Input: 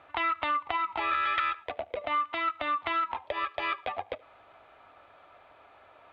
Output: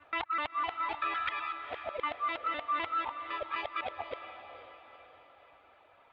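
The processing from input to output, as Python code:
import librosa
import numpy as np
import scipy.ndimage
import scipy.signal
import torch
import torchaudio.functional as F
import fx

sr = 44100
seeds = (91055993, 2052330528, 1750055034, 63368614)

y = fx.local_reverse(x, sr, ms=127.0)
y = fx.dereverb_blind(y, sr, rt60_s=1.6)
y = fx.echo_diffused(y, sr, ms=471, feedback_pct=47, wet_db=-10)
y = y * 10.0 ** (-3.5 / 20.0)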